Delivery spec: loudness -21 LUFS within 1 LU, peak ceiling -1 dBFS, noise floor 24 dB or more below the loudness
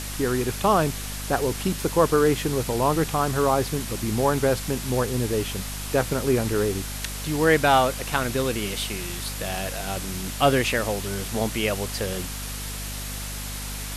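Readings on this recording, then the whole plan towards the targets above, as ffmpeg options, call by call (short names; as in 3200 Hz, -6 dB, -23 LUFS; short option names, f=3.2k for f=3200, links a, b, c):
hum 50 Hz; harmonics up to 250 Hz; hum level -32 dBFS; noise floor -33 dBFS; noise floor target -49 dBFS; loudness -24.5 LUFS; peak -6.5 dBFS; loudness target -21.0 LUFS
-> -af "bandreject=f=50:t=h:w=6,bandreject=f=100:t=h:w=6,bandreject=f=150:t=h:w=6,bandreject=f=200:t=h:w=6,bandreject=f=250:t=h:w=6"
-af "afftdn=nr=16:nf=-33"
-af "volume=3.5dB"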